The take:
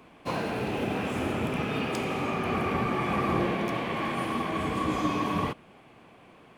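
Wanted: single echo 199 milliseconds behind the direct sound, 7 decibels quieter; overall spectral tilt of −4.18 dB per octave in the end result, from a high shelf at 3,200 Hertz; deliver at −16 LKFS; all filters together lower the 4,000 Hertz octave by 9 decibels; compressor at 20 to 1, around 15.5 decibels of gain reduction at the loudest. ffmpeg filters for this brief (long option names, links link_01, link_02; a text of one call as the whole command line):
ffmpeg -i in.wav -af "highshelf=frequency=3200:gain=-8,equalizer=frequency=4000:width_type=o:gain=-7.5,acompressor=threshold=-39dB:ratio=20,aecho=1:1:199:0.447,volume=27dB" out.wav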